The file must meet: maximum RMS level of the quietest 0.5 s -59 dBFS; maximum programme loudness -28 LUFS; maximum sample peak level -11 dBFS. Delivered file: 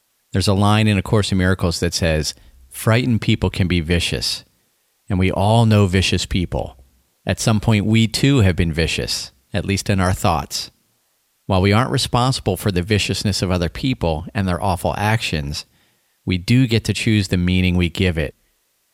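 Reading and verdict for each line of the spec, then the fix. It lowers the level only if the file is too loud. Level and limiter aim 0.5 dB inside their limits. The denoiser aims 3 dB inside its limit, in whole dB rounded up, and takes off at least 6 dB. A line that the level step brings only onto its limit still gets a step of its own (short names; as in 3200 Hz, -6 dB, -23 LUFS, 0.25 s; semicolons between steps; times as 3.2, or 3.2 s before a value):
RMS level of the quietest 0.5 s -65 dBFS: OK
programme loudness -18.5 LUFS: fail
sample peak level -3.0 dBFS: fail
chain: gain -10 dB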